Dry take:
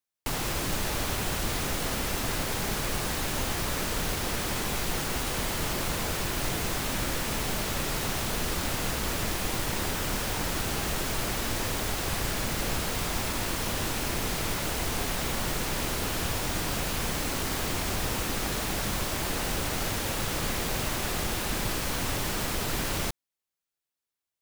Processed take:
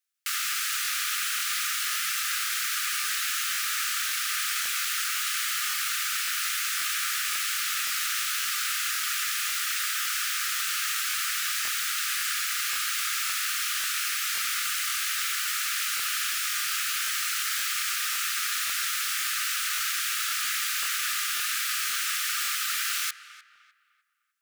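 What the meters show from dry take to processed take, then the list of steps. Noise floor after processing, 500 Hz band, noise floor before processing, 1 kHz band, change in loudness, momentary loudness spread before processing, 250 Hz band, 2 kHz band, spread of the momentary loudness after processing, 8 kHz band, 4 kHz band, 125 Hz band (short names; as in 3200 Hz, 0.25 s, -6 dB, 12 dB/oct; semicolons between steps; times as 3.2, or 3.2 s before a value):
-57 dBFS, under -30 dB, under -85 dBFS, -1.5 dB, +3.5 dB, 0 LU, under -35 dB, +5.0 dB, 0 LU, +5.5 dB, +5.0 dB, under -40 dB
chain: Chebyshev high-pass 1200 Hz, order 10; darkening echo 0.302 s, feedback 39%, low-pass 2600 Hz, level -14 dB; crackling interface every 0.54 s, samples 1024, repeat, from 0.83; gain +5.5 dB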